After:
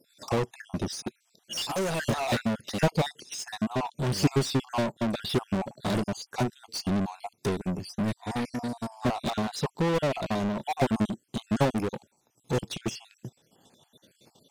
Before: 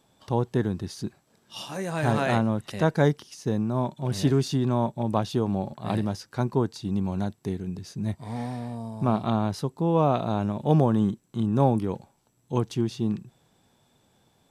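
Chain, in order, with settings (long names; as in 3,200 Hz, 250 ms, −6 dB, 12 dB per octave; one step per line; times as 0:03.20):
time-frequency cells dropped at random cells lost 50%
parametric band 1,300 Hz −9 dB 2.2 octaves
transient designer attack +7 dB, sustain −6 dB
mid-hump overdrive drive 32 dB, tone 6,800 Hz, clips at −18 dBFS
expander for the loud parts 1.5 to 1, over −42 dBFS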